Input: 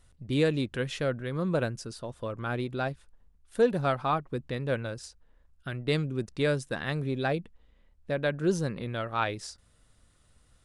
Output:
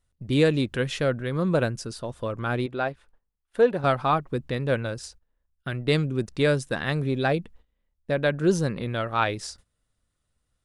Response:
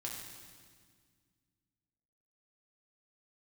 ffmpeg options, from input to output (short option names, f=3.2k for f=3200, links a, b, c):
-filter_complex "[0:a]agate=range=-18dB:threshold=-53dB:ratio=16:detection=peak,asettb=1/sr,asplit=3[a][b][c];[a]atrim=end=2.664[d];[b]atrim=start=2.66:end=3.84,asetpts=PTS-STARTPTS,afade=t=in:d=0.004:c=qsin,afade=t=out:st=1.176:d=0.004:c=qsin,bass=f=250:g=-9,treble=f=4k:g=-11[e];[c]atrim=start=3.836[f];[d][e]acrossfade=d=0.004:c1=hsin:c2=qsin[g];[g][f]acrossfade=d=0.004:c1=qsin:c2=hsin,volume=5dB"